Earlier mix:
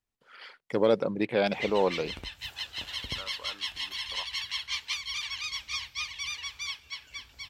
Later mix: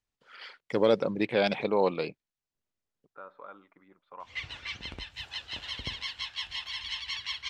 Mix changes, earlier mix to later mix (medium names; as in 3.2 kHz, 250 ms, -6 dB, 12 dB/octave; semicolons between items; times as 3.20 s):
first voice: add treble shelf 3.5 kHz +8 dB; background: entry +2.75 s; master: add distance through air 69 m